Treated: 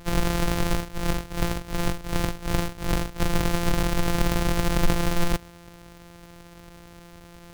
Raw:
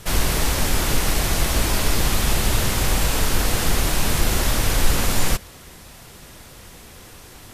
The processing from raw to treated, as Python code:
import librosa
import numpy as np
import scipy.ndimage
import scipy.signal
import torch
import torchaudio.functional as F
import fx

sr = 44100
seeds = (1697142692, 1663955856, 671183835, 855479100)

y = np.r_[np.sort(x[:len(x) // 256 * 256].reshape(-1, 256), axis=1).ravel(), x[len(x) // 256 * 256:]]
y = fx.tremolo(y, sr, hz=2.7, depth=0.88, at=(0.72, 3.2))
y = F.gain(torch.from_numpy(y), -4.0).numpy()